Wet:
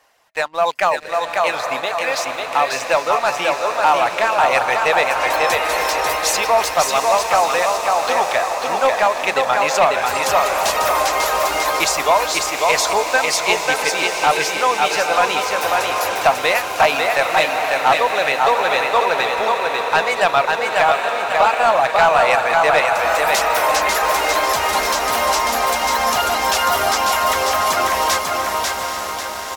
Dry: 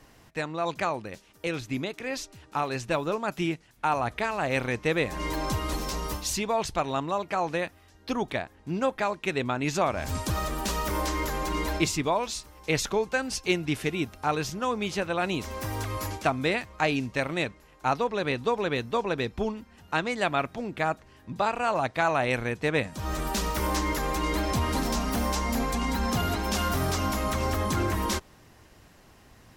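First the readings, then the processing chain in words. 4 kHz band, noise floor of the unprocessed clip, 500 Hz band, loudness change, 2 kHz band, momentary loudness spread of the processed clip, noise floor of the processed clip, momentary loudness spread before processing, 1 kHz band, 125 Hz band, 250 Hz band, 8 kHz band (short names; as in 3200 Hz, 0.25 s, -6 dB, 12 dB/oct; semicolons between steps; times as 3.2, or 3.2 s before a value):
+13.5 dB, -56 dBFS, +11.5 dB, +12.0 dB, +14.0 dB, 5 LU, -26 dBFS, 6 LU, +15.0 dB, -7.5 dB, -3.5 dB, +13.0 dB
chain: resonant low shelf 450 Hz -9.5 dB, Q 1.5; on a send: feedback echo 0.544 s, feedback 41%, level -3.5 dB; on the sum: reverb removal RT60 0.55 s; tone controls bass -14 dB, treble -1 dB; diffused feedback echo 0.816 s, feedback 59%, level -7 dB; sample leveller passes 2; gain +4.5 dB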